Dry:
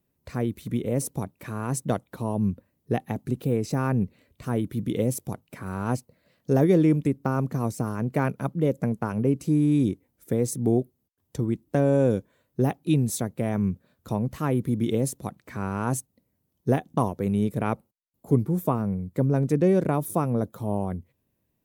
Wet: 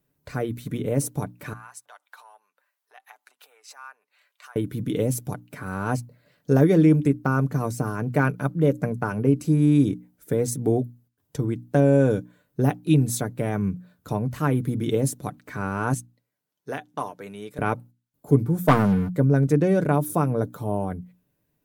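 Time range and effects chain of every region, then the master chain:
1.53–4.56 s: treble shelf 9.7 kHz -6.5 dB + compression 3:1, threshold -40 dBFS + high-pass 870 Hz 24 dB/octave
15.94–17.59 s: high-pass 1.3 kHz 6 dB/octave + treble shelf 8.3 kHz -10 dB
18.68–19.10 s: bass shelf 100 Hz -9 dB + waveshaping leveller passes 3
whole clip: peaking EQ 1.5 kHz +6 dB 0.23 oct; hum notches 60/120/180/240/300 Hz; comb 6.8 ms, depth 42%; trim +1.5 dB

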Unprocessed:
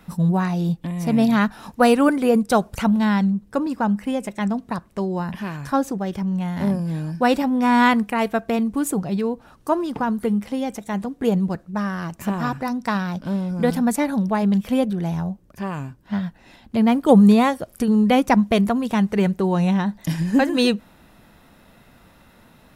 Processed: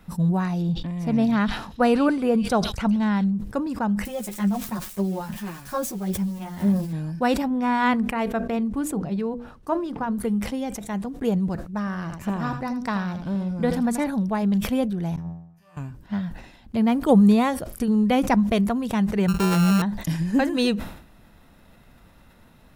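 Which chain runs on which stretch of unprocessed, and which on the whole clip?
0.62–3.24 s: treble shelf 5.8 kHz -11 dB + repeats whose band climbs or falls 131 ms, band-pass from 4 kHz, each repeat 0.7 oct, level -6 dB
4.05–6.93 s: zero-crossing glitches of -26.5 dBFS + comb 5.5 ms, depth 42% + three-phase chorus
7.47–10.18 s: treble shelf 5 kHz -9 dB + hum notches 60/120/180/240/300/360/420/480/540/600 Hz
11.79–14.07 s: treble shelf 9.7 kHz -9 dB + delay 81 ms -11 dB
15.16–15.77 s: feedback comb 84 Hz, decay 0.85 s, mix 100% + three bands expanded up and down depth 100%
19.28–19.82 s: sorted samples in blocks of 32 samples + bass shelf 340 Hz +5 dB
whole clip: bass shelf 87 Hz +9.5 dB; decay stretcher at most 86 dB/s; trim -4.5 dB

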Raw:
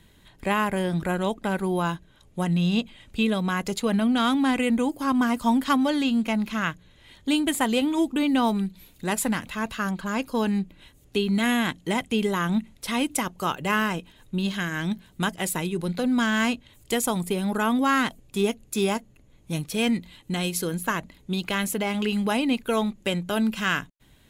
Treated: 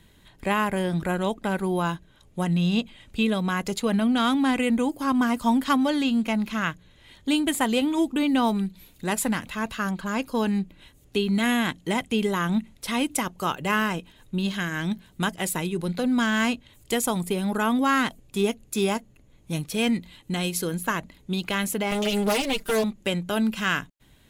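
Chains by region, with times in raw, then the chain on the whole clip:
21.91–22.84 s: comb filter that takes the minimum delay 6.4 ms + tone controls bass -2 dB, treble +6 dB + comb 5 ms, depth 66%
whole clip: none

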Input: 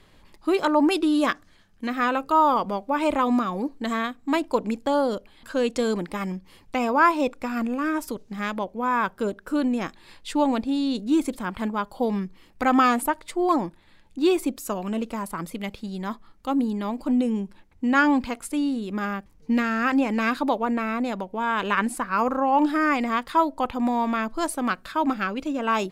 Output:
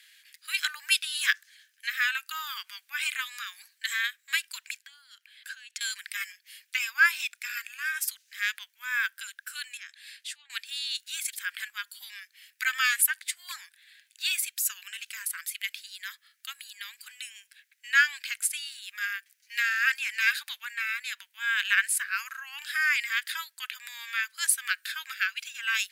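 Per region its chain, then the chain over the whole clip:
4.77–5.81 s: treble shelf 4.8 kHz -8.5 dB + compression 12:1, threshold -34 dBFS
9.77–10.50 s: low-pass that closes with the level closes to 3 kHz, closed at -16.5 dBFS + compression 2:1, threshold -45 dBFS
whole clip: Chebyshev high-pass 1.6 kHz, order 5; treble shelf 8.5 kHz +9.5 dB; trim +5 dB

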